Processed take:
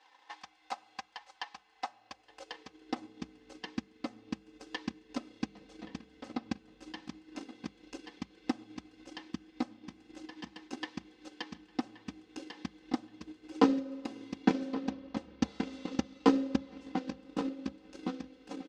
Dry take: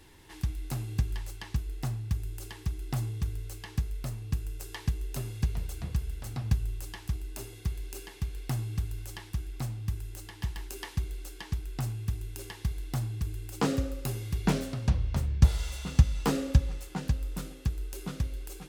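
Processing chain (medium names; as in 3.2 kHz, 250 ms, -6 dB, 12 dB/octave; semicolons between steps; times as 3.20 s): treble shelf 4.9 kHz -11.5 dB; spring tank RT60 3.7 s, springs 44 ms, chirp 30 ms, DRR 14.5 dB; in parallel at -1.5 dB: compression, threshold -37 dBFS, peak gain reduction 22.5 dB; on the sum: four-pole ladder low-pass 6.8 kHz, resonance 30%; hum notches 50/100/150/200 Hz; comb 3.9 ms, depth 94%; feedback echo behind a low-pass 1125 ms, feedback 34%, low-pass 3.9 kHz, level -9 dB; high-pass sweep 800 Hz -> 290 Hz, 1.87–3.19 s; transient shaper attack +11 dB, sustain -3 dB; trim -6.5 dB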